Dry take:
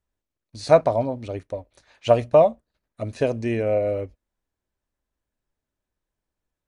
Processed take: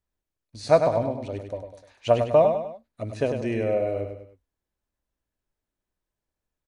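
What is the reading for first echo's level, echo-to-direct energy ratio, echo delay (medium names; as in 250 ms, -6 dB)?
-7.0 dB, -6.0 dB, 100 ms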